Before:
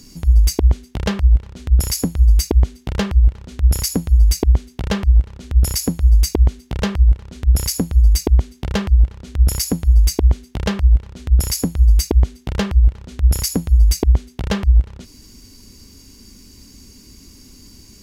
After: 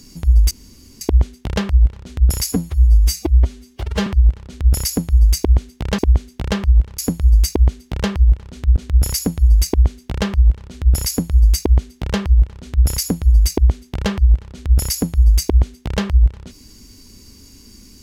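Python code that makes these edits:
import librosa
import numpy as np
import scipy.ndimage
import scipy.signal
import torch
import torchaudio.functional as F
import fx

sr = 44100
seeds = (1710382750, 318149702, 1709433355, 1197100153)

y = fx.edit(x, sr, fx.insert_room_tone(at_s=0.51, length_s=0.5),
    fx.stretch_span(start_s=2.02, length_s=1.03, factor=1.5),
    fx.cut(start_s=4.97, length_s=1.33),
    fx.duplicate(start_s=9.62, length_s=1.78, to_s=7.3), tone=tone)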